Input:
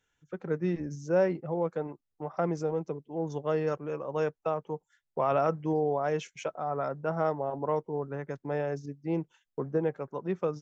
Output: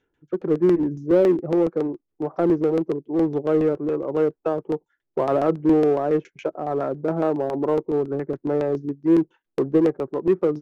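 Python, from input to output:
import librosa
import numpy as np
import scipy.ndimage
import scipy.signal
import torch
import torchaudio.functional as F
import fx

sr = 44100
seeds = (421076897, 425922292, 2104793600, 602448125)

p1 = fx.peak_eq(x, sr, hz=340.0, db=14.5, octaves=0.89)
p2 = fx.filter_lfo_lowpass(p1, sr, shape='saw_down', hz=7.2, low_hz=470.0, high_hz=4500.0, q=0.72)
p3 = np.clip(p2, -10.0 ** (-24.5 / 20.0), 10.0 ** (-24.5 / 20.0))
y = p2 + (p3 * librosa.db_to_amplitude(-5.5))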